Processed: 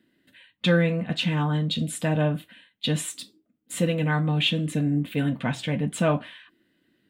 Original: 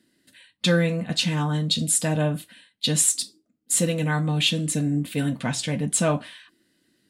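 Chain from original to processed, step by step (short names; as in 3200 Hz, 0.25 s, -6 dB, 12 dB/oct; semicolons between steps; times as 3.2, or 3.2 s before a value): band shelf 7200 Hz -14 dB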